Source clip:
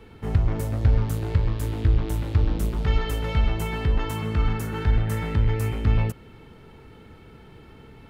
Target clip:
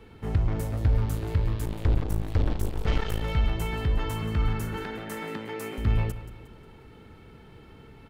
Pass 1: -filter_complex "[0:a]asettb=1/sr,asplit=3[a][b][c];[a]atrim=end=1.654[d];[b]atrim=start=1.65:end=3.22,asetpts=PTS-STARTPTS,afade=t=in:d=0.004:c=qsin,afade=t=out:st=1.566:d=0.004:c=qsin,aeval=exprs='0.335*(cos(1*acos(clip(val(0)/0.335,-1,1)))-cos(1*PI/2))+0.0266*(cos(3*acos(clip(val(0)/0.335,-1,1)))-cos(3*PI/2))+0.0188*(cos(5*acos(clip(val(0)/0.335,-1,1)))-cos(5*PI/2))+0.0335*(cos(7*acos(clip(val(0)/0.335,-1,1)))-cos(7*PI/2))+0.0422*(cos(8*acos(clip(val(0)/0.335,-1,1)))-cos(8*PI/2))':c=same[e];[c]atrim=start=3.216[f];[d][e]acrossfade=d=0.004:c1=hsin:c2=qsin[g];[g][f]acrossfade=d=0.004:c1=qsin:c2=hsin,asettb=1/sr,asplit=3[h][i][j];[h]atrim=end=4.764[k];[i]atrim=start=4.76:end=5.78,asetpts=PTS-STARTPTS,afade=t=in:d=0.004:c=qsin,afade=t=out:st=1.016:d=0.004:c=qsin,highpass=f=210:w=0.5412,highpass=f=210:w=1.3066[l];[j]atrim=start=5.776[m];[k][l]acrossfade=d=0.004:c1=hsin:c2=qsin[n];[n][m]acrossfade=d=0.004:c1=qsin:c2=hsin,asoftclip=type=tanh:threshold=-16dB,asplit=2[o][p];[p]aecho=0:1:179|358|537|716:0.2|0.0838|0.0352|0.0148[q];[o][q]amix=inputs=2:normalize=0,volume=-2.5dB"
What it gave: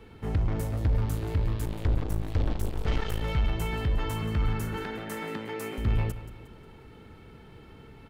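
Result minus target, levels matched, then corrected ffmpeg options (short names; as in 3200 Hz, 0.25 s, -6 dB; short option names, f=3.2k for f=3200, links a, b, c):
soft clip: distortion +10 dB
-filter_complex "[0:a]asettb=1/sr,asplit=3[a][b][c];[a]atrim=end=1.654[d];[b]atrim=start=1.65:end=3.22,asetpts=PTS-STARTPTS,afade=t=in:d=0.004:c=qsin,afade=t=out:st=1.566:d=0.004:c=qsin,aeval=exprs='0.335*(cos(1*acos(clip(val(0)/0.335,-1,1)))-cos(1*PI/2))+0.0266*(cos(3*acos(clip(val(0)/0.335,-1,1)))-cos(3*PI/2))+0.0188*(cos(5*acos(clip(val(0)/0.335,-1,1)))-cos(5*PI/2))+0.0335*(cos(7*acos(clip(val(0)/0.335,-1,1)))-cos(7*PI/2))+0.0422*(cos(8*acos(clip(val(0)/0.335,-1,1)))-cos(8*PI/2))':c=same[e];[c]atrim=start=3.216[f];[d][e]acrossfade=d=0.004:c1=hsin:c2=qsin[g];[g][f]acrossfade=d=0.004:c1=qsin:c2=hsin,asettb=1/sr,asplit=3[h][i][j];[h]atrim=end=4.764[k];[i]atrim=start=4.76:end=5.78,asetpts=PTS-STARTPTS,afade=t=in:d=0.004:c=qsin,afade=t=out:st=1.016:d=0.004:c=qsin,highpass=f=210:w=0.5412,highpass=f=210:w=1.3066[l];[j]atrim=start=5.776[m];[k][l]acrossfade=d=0.004:c1=hsin:c2=qsin[n];[n][m]acrossfade=d=0.004:c1=qsin:c2=hsin,asoftclip=type=tanh:threshold=-9.5dB,asplit=2[o][p];[p]aecho=0:1:179|358|537|716:0.2|0.0838|0.0352|0.0148[q];[o][q]amix=inputs=2:normalize=0,volume=-2.5dB"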